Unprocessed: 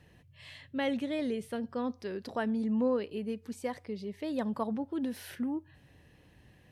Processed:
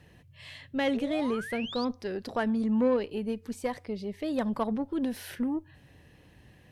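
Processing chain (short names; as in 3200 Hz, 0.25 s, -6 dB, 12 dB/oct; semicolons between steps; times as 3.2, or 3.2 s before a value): painted sound rise, 0.94–1.85, 400–5000 Hz -44 dBFS; added harmonics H 6 -26 dB, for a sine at -19.5 dBFS; gain +3.5 dB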